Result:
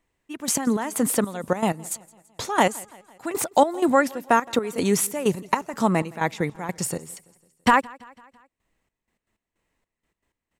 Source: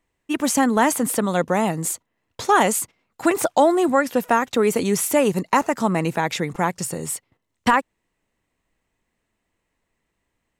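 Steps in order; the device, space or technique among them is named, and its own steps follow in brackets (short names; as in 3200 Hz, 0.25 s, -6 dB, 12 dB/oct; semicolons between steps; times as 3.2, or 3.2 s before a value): trance gate with a delay (step gate "xxx..x.x.." 157 bpm -12 dB; feedback echo 0.167 s, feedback 56%, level -24 dB)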